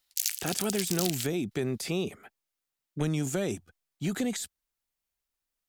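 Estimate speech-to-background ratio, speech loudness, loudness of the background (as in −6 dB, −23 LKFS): 0.5 dB, −32.0 LKFS, −32.5 LKFS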